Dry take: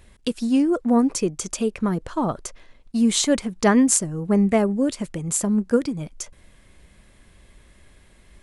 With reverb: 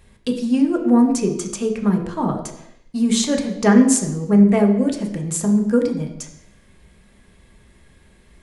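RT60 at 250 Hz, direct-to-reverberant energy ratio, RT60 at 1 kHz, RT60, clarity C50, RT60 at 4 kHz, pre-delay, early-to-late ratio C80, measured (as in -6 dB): 0.80 s, 1.5 dB, 0.85 s, 0.80 s, 8.5 dB, 0.80 s, 3 ms, 10.5 dB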